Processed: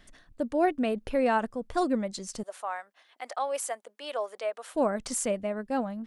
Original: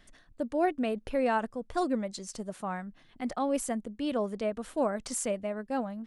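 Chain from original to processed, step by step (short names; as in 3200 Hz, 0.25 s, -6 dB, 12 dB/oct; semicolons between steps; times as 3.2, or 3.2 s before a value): 2.43–4.75 HPF 550 Hz 24 dB/oct; gain +2.5 dB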